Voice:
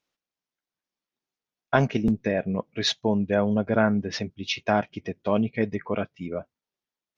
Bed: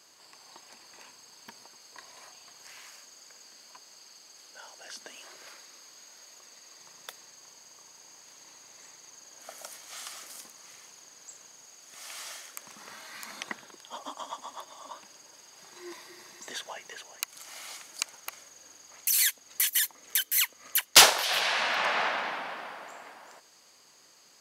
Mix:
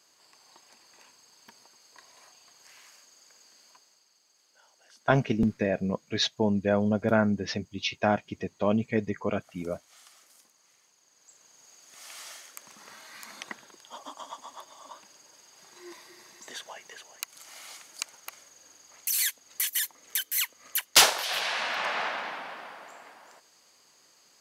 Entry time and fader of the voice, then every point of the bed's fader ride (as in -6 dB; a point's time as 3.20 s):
3.35 s, -2.0 dB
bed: 3.69 s -5 dB
4.06 s -13.5 dB
10.98 s -13.5 dB
11.72 s -2.5 dB